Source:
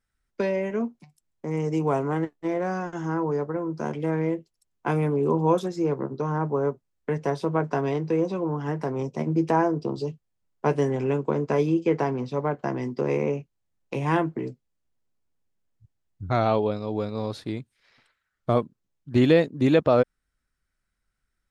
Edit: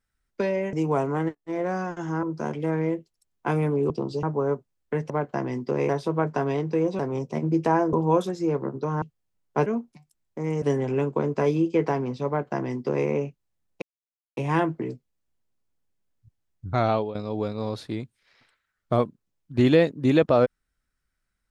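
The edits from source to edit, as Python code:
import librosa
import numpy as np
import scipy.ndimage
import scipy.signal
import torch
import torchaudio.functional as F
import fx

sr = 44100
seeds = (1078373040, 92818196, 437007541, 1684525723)

y = fx.edit(x, sr, fx.move(start_s=0.73, length_s=0.96, to_s=10.74),
    fx.fade_in_from(start_s=2.31, length_s=0.27, floor_db=-16.5),
    fx.cut(start_s=3.19, length_s=0.44),
    fx.swap(start_s=5.3, length_s=1.09, other_s=9.77, other_length_s=0.33),
    fx.cut(start_s=8.36, length_s=0.47),
    fx.duplicate(start_s=12.4, length_s=0.79, to_s=7.26),
    fx.insert_silence(at_s=13.94, length_s=0.55),
    fx.fade_out_to(start_s=16.47, length_s=0.25, floor_db=-13.0), tone=tone)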